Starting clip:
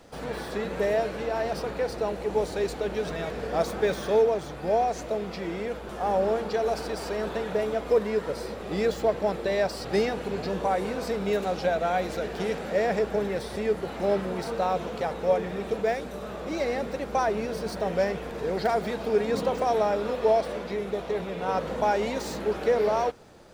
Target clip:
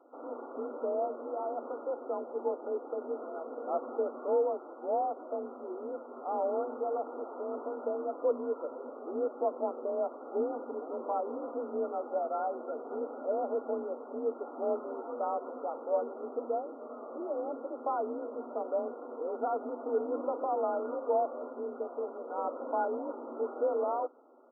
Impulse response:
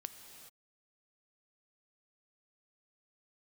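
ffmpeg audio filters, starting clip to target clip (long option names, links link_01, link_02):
-af "asetrate=42336,aresample=44100,afftfilt=real='re*between(b*sr/4096,190,1400)':imag='im*between(b*sr/4096,190,1400)':win_size=4096:overlap=0.75,afreqshift=45,volume=-7dB"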